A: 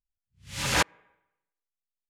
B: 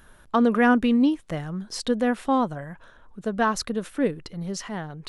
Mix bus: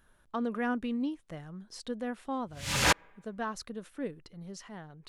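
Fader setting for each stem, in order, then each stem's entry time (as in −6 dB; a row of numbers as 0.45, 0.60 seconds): −0.5, −13.0 decibels; 2.10, 0.00 seconds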